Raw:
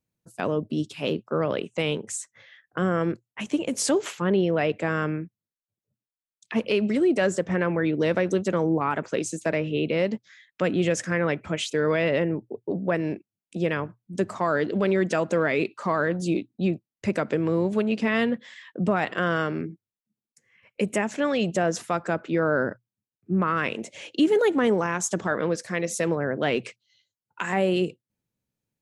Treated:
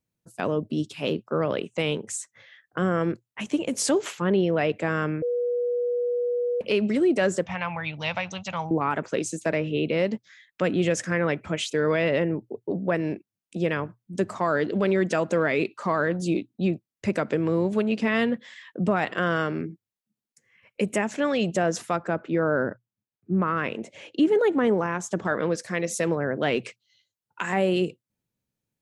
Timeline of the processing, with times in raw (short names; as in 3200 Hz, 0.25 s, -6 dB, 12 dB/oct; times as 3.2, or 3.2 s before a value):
5.22–6.61 bleep 485 Hz -22.5 dBFS
7.46–8.71 EQ curve 130 Hz 0 dB, 230 Hz -14 dB, 390 Hz -26 dB, 810 Hz +6 dB, 1700 Hz -5 dB, 2500 Hz +8 dB, 6900 Hz -1 dB, 9900 Hz -28 dB
21.96–25.25 high shelf 3300 Hz -10.5 dB